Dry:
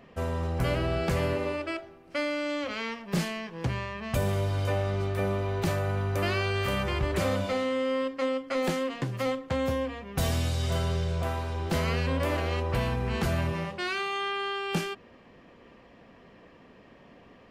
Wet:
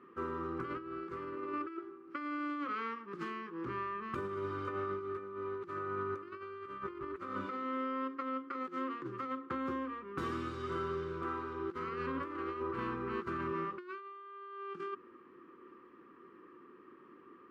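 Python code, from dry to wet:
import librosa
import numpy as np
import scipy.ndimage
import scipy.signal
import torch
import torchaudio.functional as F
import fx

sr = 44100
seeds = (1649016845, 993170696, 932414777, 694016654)

y = fx.double_bandpass(x, sr, hz=660.0, octaves=1.8)
y = fx.over_compress(y, sr, threshold_db=-43.0, ratio=-0.5)
y = y * librosa.db_to_amplitude(4.5)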